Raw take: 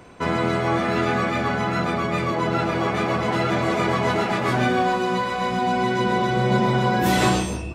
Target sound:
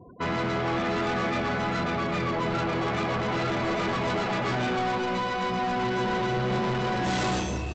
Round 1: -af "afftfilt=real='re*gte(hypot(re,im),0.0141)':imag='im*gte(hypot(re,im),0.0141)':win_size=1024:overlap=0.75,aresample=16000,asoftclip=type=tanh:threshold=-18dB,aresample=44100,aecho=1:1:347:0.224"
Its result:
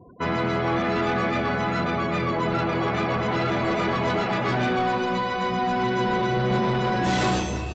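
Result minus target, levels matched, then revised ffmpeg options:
soft clip: distortion -6 dB
-af "afftfilt=real='re*gte(hypot(re,im),0.0141)':imag='im*gte(hypot(re,im),0.0141)':win_size=1024:overlap=0.75,aresample=16000,asoftclip=type=tanh:threshold=-24.5dB,aresample=44100,aecho=1:1:347:0.224"

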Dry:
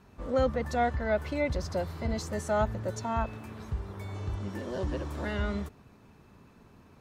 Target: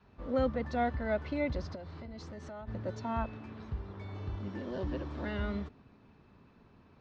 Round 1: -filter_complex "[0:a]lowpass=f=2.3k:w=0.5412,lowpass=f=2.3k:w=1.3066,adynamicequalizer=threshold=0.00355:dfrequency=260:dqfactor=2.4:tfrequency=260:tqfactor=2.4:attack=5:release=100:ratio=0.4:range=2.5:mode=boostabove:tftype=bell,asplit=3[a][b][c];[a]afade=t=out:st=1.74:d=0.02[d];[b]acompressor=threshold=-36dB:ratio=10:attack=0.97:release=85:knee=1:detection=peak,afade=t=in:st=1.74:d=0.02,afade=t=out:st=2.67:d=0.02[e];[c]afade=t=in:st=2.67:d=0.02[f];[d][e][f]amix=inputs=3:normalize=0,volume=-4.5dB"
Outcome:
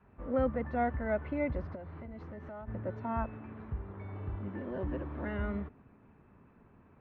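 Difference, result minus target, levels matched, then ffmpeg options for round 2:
4000 Hz band -12.5 dB
-filter_complex "[0:a]lowpass=f=4.8k:w=0.5412,lowpass=f=4.8k:w=1.3066,adynamicequalizer=threshold=0.00355:dfrequency=260:dqfactor=2.4:tfrequency=260:tqfactor=2.4:attack=5:release=100:ratio=0.4:range=2.5:mode=boostabove:tftype=bell,asplit=3[a][b][c];[a]afade=t=out:st=1.74:d=0.02[d];[b]acompressor=threshold=-36dB:ratio=10:attack=0.97:release=85:knee=1:detection=peak,afade=t=in:st=1.74:d=0.02,afade=t=out:st=2.67:d=0.02[e];[c]afade=t=in:st=2.67:d=0.02[f];[d][e][f]amix=inputs=3:normalize=0,volume=-4.5dB"

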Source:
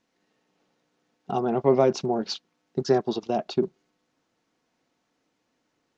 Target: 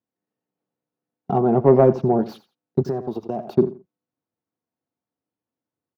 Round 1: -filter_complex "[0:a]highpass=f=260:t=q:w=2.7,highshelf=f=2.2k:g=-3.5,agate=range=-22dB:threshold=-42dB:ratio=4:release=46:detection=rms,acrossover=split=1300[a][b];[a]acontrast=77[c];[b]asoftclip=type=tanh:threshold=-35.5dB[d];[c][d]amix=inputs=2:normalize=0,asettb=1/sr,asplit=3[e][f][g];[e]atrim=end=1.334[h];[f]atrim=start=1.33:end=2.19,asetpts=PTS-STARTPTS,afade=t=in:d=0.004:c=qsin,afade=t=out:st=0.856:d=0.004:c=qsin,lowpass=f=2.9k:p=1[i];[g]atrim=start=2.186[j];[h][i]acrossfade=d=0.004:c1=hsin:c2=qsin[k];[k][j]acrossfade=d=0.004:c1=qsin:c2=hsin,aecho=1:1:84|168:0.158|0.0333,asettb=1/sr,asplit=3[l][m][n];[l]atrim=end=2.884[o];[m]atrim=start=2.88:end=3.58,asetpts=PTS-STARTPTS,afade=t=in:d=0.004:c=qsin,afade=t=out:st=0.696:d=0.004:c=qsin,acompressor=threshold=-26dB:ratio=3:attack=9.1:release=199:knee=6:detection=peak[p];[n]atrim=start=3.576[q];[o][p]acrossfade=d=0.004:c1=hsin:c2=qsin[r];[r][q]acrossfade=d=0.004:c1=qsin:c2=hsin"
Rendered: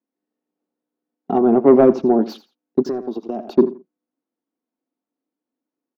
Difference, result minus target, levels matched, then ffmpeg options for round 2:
125 Hz band -13.5 dB; soft clip: distortion -7 dB
-filter_complex "[0:a]highpass=f=90:t=q:w=2.7,highshelf=f=2.2k:g=-3.5,agate=range=-22dB:threshold=-42dB:ratio=4:release=46:detection=rms,acrossover=split=1300[a][b];[a]acontrast=77[c];[b]asoftclip=type=tanh:threshold=-46.5dB[d];[c][d]amix=inputs=2:normalize=0,asettb=1/sr,asplit=3[e][f][g];[e]atrim=end=1.334[h];[f]atrim=start=1.33:end=2.19,asetpts=PTS-STARTPTS,afade=t=in:d=0.004:c=qsin,afade=t=out:st=0.856:d=0.004:c=qsin,lowpass=f=2.9k:p=1[i];[g]atrim=start=2.186[j];[h][i]acrossfade=d=0.004:c1=hsin:c2=qsin[k];[k][j]acrossfade=d=0.004:c1=qsin:c2=hsin,aecho=1:1:84|168:0.158|0.0333,asettb=1/sr,asplit=3[l][m][n];[l]atrim=end=2.884[o];[m]atrim=start=2.88:end=3.58,asetpts=PTS-STARTPTS,afade=t=in:d=0.004:c=qsin,afade=t=out:st=0.696:d=0.004:c=qsin,acompressor=threshold=-26dB:ratio=3:attack=9.1:release=199:knee=6:detection=peak[p];[n]atrim=start=3.576[q];[o][p]acrossfade=d=0.004:c1=hsin:c2=qsin[r];[r][q]acrossfade=d=0.004:c1=qsin:c2=hsin"

